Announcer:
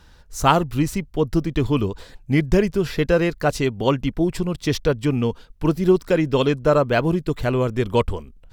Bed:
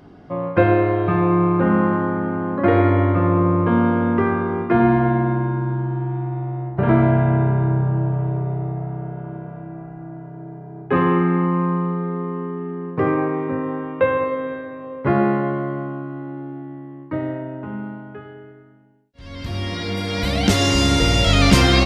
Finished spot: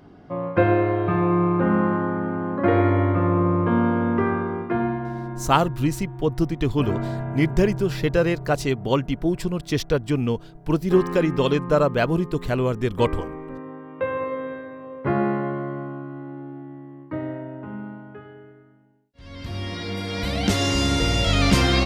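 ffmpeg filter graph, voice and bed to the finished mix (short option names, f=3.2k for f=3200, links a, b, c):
-filter_complex "[0:a]adelay=5050,volume=-2dB[a];[1:a]volume=4.5dB,afade=t=out:st=4.35:d=0.66:silence=0.354813,afade=t=in:st=13.84:d=0.52:silence=0.421697[b];[a][b]amix=inputs=2:normalize=0"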